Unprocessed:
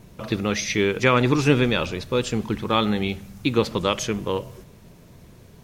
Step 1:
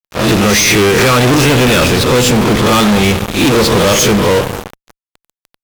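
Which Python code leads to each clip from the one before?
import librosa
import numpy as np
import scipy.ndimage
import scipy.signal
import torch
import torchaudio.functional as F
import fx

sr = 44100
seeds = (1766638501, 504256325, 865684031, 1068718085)

y = fx.spec_swells(x, sr, rise_s=0.35)
y = fx.rev_spring(y, sr, rt60_s=2.6, pass_ms=(32, 38, 44), chirp_ms=70, drr_db=18.0)
y = fx.fuzz(y, sr, gain_db=36.0, gate_db=-36.0)
y = y * 10.0 ** (5.5 / 20.0)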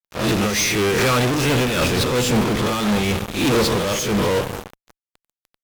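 y = fx.am_noise(x, sr, seeds[0], hz=5.7, depth_pct=60)
y = y * 10.0 ** (-6.0 / 20.0)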